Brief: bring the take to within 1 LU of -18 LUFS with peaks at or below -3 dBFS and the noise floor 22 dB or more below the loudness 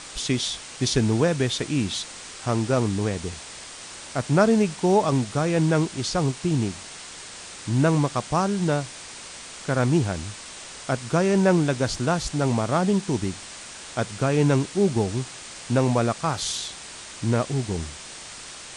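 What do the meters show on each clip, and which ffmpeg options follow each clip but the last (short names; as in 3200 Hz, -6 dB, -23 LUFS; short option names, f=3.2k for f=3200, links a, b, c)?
noise floor -40 dBFS; noise floor target -46 dBFS; loudness -24.0 LUFS; peak -7.0 dBFS; loudness target -18.0 LUFS
-> -af "afftdn=nr=6:nf=-40"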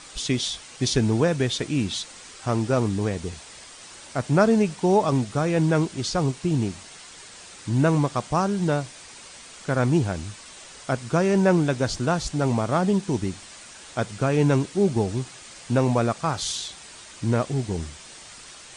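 noise floor -45 dBFS; noise floor target -46 dBFS
-> -af "afftdn=nr=6:nf=-45"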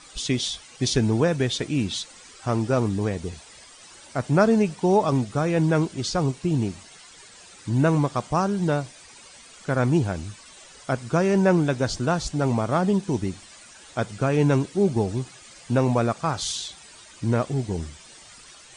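noise floor -48 dBFS; loudness -24.0 LUFS; peak -7.0 dBFS; loudness target -18.0 LUFS
-> -af "volume=6dB,alimiter=limit=-3dB:level=0:latency=1"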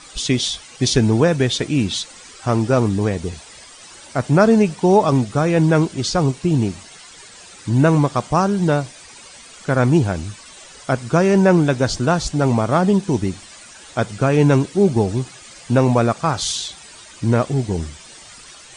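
loudness -18.0 LUFS; peak -3.0 dBFS; noise floor -42 dBFS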